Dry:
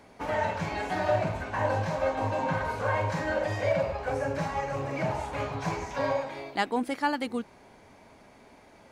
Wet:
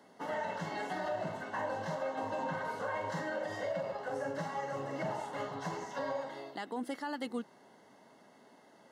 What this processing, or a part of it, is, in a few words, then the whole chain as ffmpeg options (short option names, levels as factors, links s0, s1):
PA system with an anti-feedback notch: -af "highpass=f=150:w=0.5412,highpass=f=150:w=1.3066,asuperstop=centerf=2400:order=20:qfactor=6,alimiter=limit=0.0794:level=0:latency=1:release=86,volume=0.531"